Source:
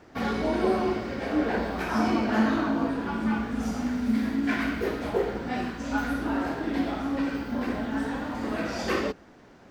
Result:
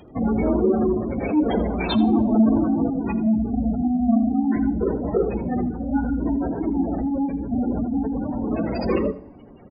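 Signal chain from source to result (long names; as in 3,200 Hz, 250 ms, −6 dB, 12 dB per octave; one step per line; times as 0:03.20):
each half-wave held at its own peak
gate on every frequency bin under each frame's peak −15 dB strong
high shelf with overshoot 2,200 Hz +11.5 dB, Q 3
single-tap delay 81 ms −16.5 dB
on a send at −19 dB: convolution reverb RT60 1.2 s, pre-delay 8 ms
on the sum: level +3 dB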